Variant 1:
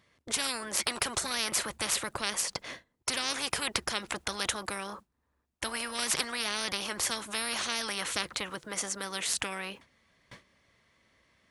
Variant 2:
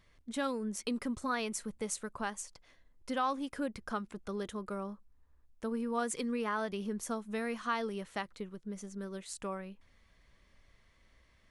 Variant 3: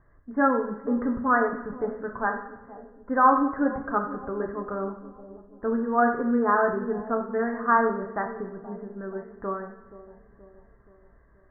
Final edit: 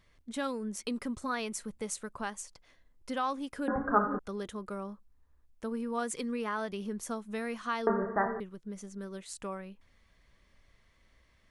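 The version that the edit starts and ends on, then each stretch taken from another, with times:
2
3.68–4.19 s: from 3
7.87–8.40 s: from 3
not used: 1

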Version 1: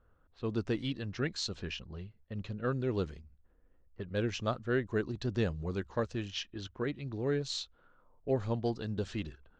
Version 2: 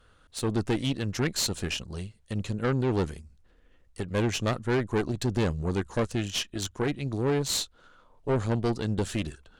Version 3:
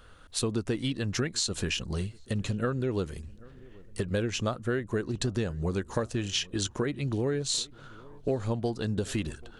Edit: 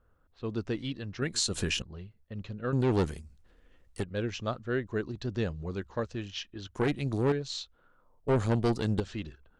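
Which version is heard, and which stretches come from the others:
1
1.22–1.82 s: from 3
2.73–4.04 s: from 2
6.75–7.32 s: from 2
8.28–9.00 s: from 2

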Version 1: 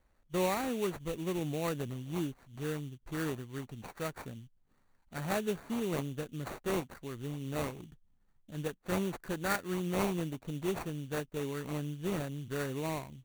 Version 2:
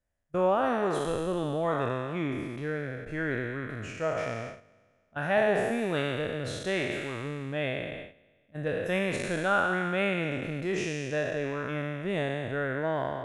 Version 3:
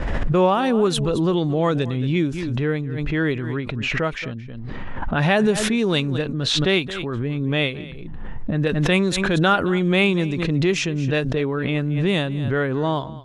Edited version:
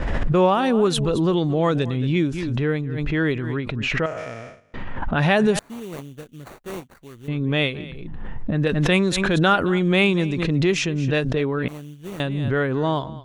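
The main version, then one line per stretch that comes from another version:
3
4.06–4.74 s: from 2
5.59–7.28 s: from 1
11.68–12.20 s: from 1

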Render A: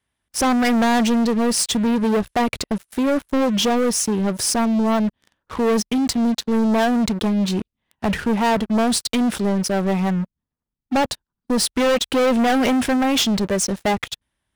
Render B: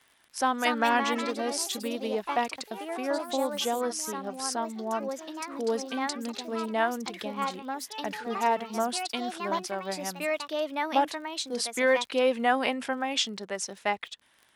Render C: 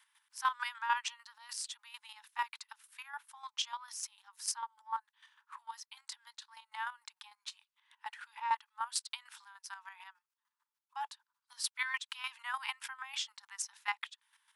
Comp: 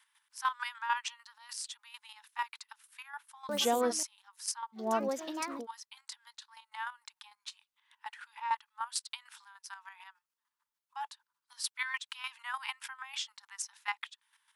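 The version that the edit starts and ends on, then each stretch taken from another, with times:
C
3.49–4.03 s: from B
4.80–5.59 s: from B, crossfade 0.16 s
not used: A

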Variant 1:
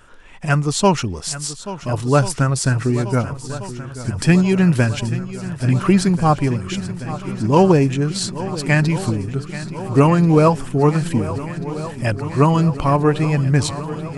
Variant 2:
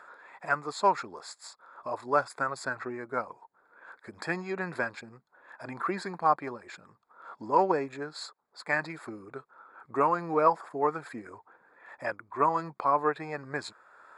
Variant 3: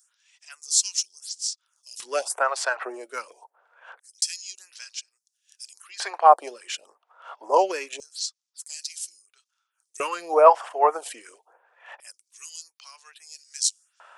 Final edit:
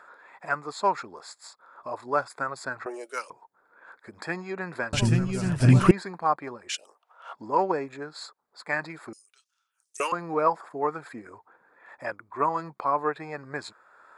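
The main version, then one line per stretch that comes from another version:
2
2.86–3.30 s: from 3
4.93–5.91 s: from 1
6.69–7.33 s: from 3
9.13–10.12 s: from 3

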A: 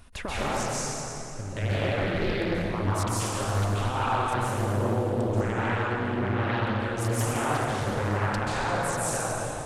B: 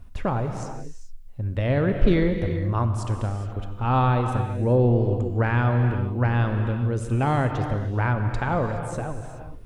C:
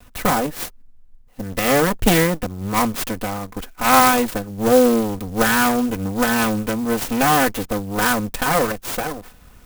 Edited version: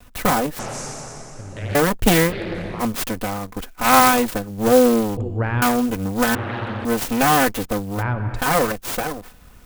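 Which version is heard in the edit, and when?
C
0.59–1.75 s: from A
2.30–2.82 s: from A, crossfade 0.06 s
5.17–5.62 s: from B
6.35–6.85 s: from A
7.98–8.40 s: from B, crossfade 0.10 s

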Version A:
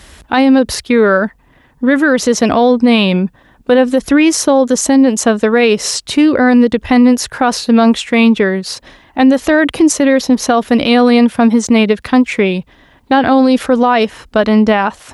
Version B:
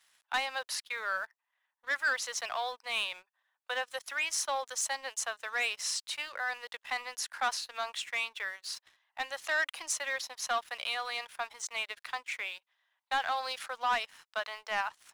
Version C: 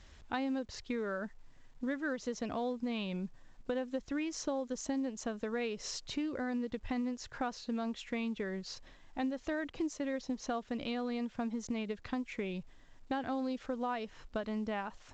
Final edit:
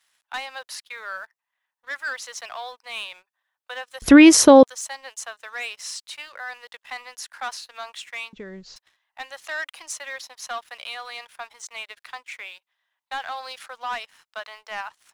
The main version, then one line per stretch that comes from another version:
B
4.02–4.63 s: from A
8.33–8.76 s: from C

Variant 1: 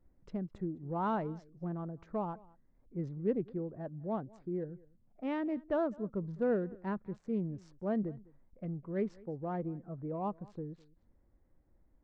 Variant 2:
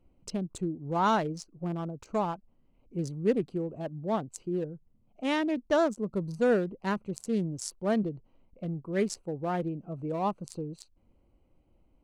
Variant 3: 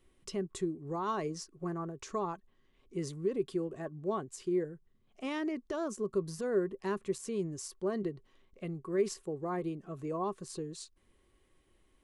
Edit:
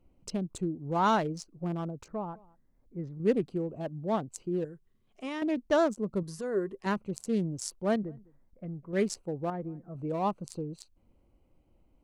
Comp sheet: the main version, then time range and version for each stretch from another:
2
2.08–3.20 s: from 1
4.65–5.42 s: from 3
6.23–6.86 s: from 3
7.96–8.93 s: from 1
9.50–9.95 s: from 1

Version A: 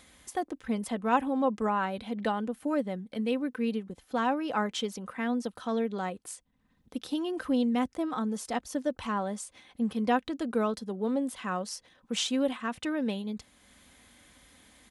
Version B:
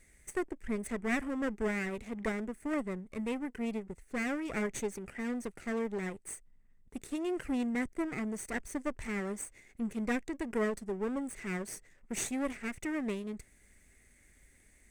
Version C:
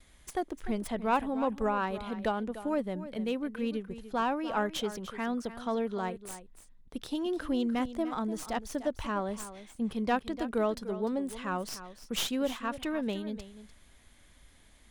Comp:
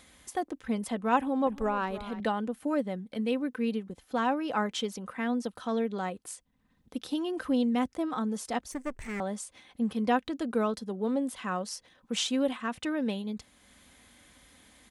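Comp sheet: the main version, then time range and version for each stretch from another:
A
1.47–2.20 s: from C
8.72–9.20 s: from B

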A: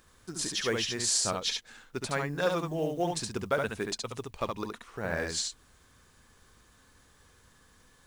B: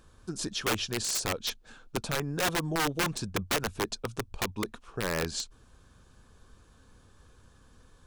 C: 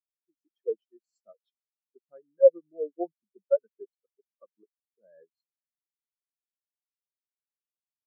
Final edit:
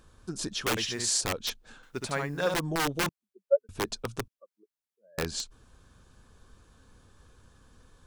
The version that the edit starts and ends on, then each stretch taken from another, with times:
B
0.77–1.21 s: from A
1.83–2.54 s: from A
3.09–3.69 s: from C
4.28–5.18 s: from C

